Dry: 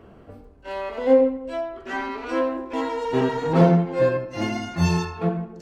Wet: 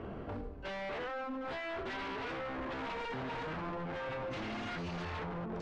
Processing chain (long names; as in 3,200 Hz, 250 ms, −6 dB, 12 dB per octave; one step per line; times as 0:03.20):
downward compressor 10 to 1, threshold −30 dBFS, peak gain reduction 19.5 dB
brickwall limiter −31.5 dBFS, peak gain reduction 10.5 dB
0:02.81–0:04.24: comb filter 1.3 ms, depth 55%
wave folding −39 dBFS
low-pass filter 3,600 Hz 12 dB per octave
level +4.5 dB